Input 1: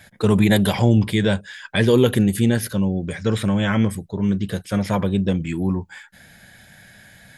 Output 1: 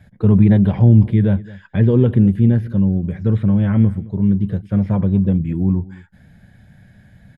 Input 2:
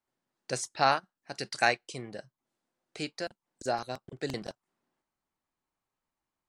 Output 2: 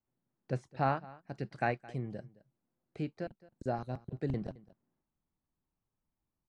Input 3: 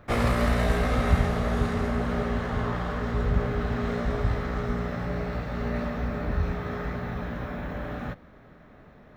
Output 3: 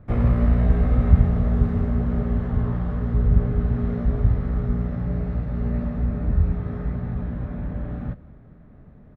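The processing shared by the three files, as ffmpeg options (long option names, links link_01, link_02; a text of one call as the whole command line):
ffmpeg -i in.wav -filter_complex "[0:a]bass=frequency=250:gain=10,treble=frequency=4000:gain=-6,acrossover=split=3300[link_01][link_02];[link_02]acompressor=threshold=-53dB:ratio=4:attack=1:release=60[link_03];[link_01][link_03]amix=inputs=2:normalize=0,tiltshelf=frequency=970:gain=5,asplit=2[link_04][link_05];[link_05]aecho=0:1:217:0.0944[link_06];[link_04][link_06]amix=inputs=2:normalize=0,volume=-7dB" out.wav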